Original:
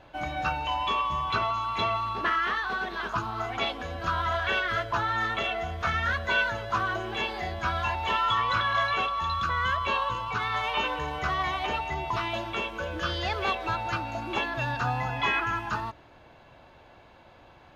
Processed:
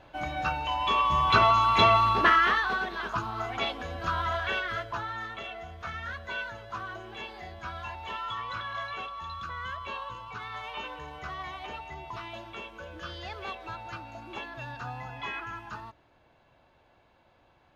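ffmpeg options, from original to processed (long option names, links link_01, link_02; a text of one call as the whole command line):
ffmpeg -i in.wav -af "volume=7.5dB,afade=type=in:start_time=0.77:duration=0.71:silence=0.375837,afade=type=out:start_time=2.07:duration=0.86:silence=0.354813,afade=type=out:start_time=4.21:duration=1.07:silence=0.375837" out.wav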